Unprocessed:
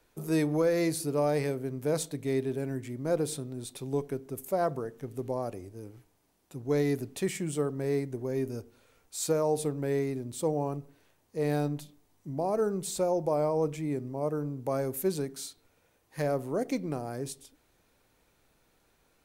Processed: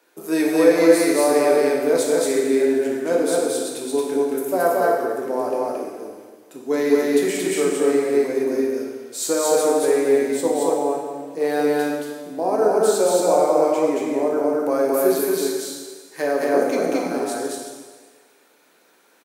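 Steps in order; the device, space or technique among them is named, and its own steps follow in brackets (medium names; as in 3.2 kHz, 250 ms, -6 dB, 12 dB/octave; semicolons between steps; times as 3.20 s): stadium PA (high-pass 250 Hz 24 dB/octave; peaking EQ 1.6 kHz +3.5 dB 0.32 oct; loudspeakers at several distances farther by 77 m -1 dB, 94 m -10 dB; reverberation RT60 1.6 s, pre-delay 6 ms, DRR -1 dB); trim +6 dB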